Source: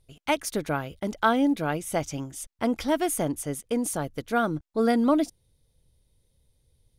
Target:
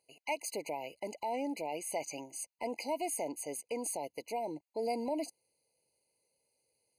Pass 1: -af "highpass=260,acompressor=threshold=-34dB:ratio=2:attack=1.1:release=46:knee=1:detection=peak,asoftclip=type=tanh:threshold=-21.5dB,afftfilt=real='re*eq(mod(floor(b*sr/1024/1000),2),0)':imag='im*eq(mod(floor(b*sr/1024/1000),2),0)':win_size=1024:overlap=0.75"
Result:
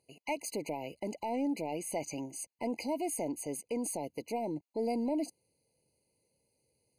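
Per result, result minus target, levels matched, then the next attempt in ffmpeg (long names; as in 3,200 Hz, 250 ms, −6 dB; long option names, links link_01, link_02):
soft clipping: distortion +14 dB; 250 Hz band +4.5 dB
-af "highpass=260,acompressor=threshold=-34dB:ratio=2:attack=1.1:release=46:knee=1:detection=peak,asoftclip=type=tanh:threshold=-14dB,afftfilt=real='re*eq(mod(floor(b*sr/1024/1000),2),0)':imag='im*eq(mod(floor(b*sr/1024/1000),2),0)':win_size=1024:overlap=0.75"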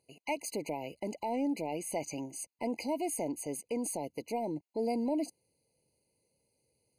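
250 Hz band +4.5 dB
-af "highpass=550,acompressor=threshold=-34dB:ratio=2:attack=1.1:release=46:knee=1:detection=peak,asoftclip=type=tanh:threshold=-14dB,afftfilt=real='re*eq(mod(floor(b*sr/1024/1000),2),0)':imag='im*eq(mod(floor(b*sr/1024/1000),2),0)':win_size=1024:overlap=0.75"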